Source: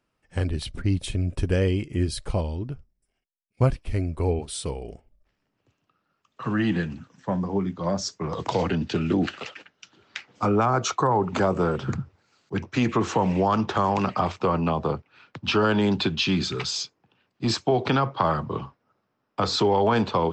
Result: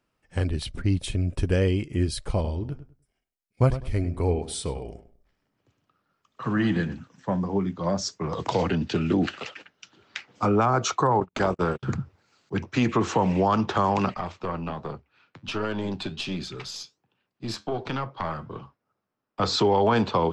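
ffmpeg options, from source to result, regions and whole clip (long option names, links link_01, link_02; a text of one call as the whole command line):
ffmpeg -i in.wav -filter_complex "[0:a]asettb=1/sr,asplit=3[link_01][link_02][link_03];[link_01]atrim=end=2.284[link_04];[link_02]atrim=start=2.28:end=6.96,asetpts=PTS-STARTPTS,afade=type=in:duration=0.004:curve=qsin,afade=type=out:start_time=4.676:duration=0.004:curve=qsin,bandreject=frequency=2700:width=14,asplit=2[link_05][link_06];[link_06]adelay=100,lowpass=frequency=2100:poles=1,volume=-12dB,asplit=2[link_07][link_08];[link_08]adelay=100,lowpass=frequency=2100:poles=1,volume=0.23,asplit=2[link_09][link_10];[link_10]adelay=100,lowpass=frequency=2100:poles=1,volume=0.23[link_11];[link_05][link_07][link_09][link_11]amix=inputs=4:normalize=0,atrim=end_sample=206388[link_12];[link_03]atrim=start=6.956[link_13];[link_04][link_12]acrossfade=duration=0.004:curve1=hsin:curve2=qsin[link_14];[link_14][link_13]acrossfade=duration=0.004:curve1=qsin:curve2=hsin,asettb=1/sr,asplit=3[link_15][link_16][link_17];[link_15]atrim=end=11.204[link_18];[link_16]atrim=start=11.2:end=11.83,asetpts=PTS-STARTPTS,afade=type=in:duration=0.004:curve=qsin,afade=type=out:start_time=0.626:duration=0.004:curve=qsin,equalizer=frequency=3400:width_type=o:width=2.7:gain=5.5,agate=range=-49dB:threshold=-25dB:ratio=16:release=100:detection=peak,tremolo=f=250:d=0.571[link_19];[link_17]atrim=start=11.826[link_20];[link_18][link_19]acrossfade=duration=0.004:curve1=hsin:curve2=qsin[link_21];[link_21][link_20]acrossfade=duration=0.004:curve1=qsin:curve2=hsin,asettb=1/sr,asplit=3[link_22][link_23][link_24];[link_22]atrim=end=14.144[link_25];[link_23]atrim=start=14.14:end=19.4,asetpts=PTS-STARTPTS,afade=type=in:duration=0.004:curve=qsin,afade=type=out:start_time=5.256:duration=0.004:curve=qsin,aeval=exprs='(tanh(3.55*val(0)+0.7)-tanh(0.7))/3.55':channel_layout=same,flanger=delay=5:depth=6.9:regen=-73:speed=1.3:shape=sinusoidal[link_26];[link_24]atrim=start=19.396[link_27];[link_25][link_26]acrossfade=duration=0.004:curve1=hsin:curve2=qsin[link_28];[link_28][link_27]acrossfade=duration=0.004:curve1=qsin:curve2=hsin" out.wav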